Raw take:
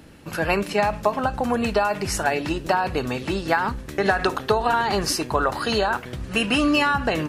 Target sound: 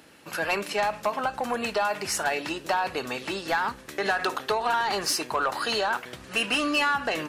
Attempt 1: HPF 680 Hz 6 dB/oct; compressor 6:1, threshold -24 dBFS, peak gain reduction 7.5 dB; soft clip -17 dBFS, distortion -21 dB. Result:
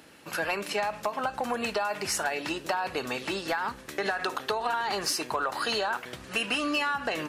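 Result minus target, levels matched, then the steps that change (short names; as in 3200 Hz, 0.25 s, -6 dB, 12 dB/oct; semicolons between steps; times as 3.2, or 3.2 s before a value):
compressor: peak gain reduction +7.5 dB
remove: compressor 6:1, threshold -24 dBFS, peak gain reduction 7.5 dB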